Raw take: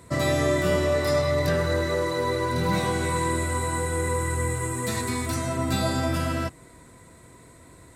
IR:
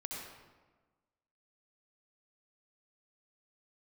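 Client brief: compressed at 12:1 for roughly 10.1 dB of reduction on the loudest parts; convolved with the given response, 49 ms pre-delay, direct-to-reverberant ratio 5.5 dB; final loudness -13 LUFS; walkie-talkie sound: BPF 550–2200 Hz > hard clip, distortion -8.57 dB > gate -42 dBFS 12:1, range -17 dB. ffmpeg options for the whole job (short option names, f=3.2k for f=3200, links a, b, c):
-filter_complex "[0:a]acompressor=threshold=-29dB:ratio=12,asplit=2[a][b];[1:a]atrim=start_sample=2205,adelay=49[c];[b][c]afir=irnorm=-1:irlink=0,volume=-5.5dB[d];[a][d]amix=inputs=2:normalize=0,highpass=550,lowpass=2.2k,asoftclip=type=hard:threshold=-38.5dB,agate=range=-17dB:threshold=-42dB:ratio=12,volume=27.5dB"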